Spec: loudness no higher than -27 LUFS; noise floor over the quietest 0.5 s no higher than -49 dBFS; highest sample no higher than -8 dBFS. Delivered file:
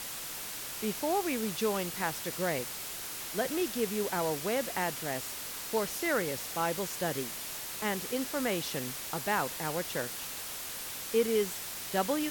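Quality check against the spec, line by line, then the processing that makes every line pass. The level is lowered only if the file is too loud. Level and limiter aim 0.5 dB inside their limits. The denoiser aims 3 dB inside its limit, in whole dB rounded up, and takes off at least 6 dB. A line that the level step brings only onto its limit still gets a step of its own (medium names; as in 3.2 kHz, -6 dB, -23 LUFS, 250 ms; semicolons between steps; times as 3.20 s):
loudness -33.0 LUFS: pass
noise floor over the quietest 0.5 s -40 dBFS: fail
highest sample -16.0 dBFS: pass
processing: noise reduction 12 dB, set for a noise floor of -40 dBFS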